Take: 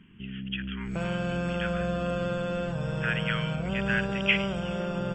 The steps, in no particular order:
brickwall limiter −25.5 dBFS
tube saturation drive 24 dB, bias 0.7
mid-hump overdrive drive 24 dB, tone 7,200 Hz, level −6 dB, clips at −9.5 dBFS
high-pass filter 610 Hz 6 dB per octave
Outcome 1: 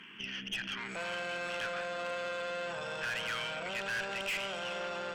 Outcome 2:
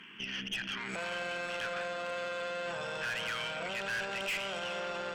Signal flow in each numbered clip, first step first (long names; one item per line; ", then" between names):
mid-hump overdrive, then brickwall limiter, then high-pass filter, then tube saturation
mid-hump overdrive, then high-pass filter, then brickwall limiter, then tube saturation